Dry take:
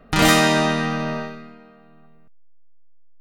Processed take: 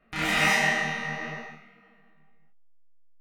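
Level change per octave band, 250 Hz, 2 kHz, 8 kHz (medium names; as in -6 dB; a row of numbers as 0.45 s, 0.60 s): -14.0 dB, -2.0 dB, -9.0 dB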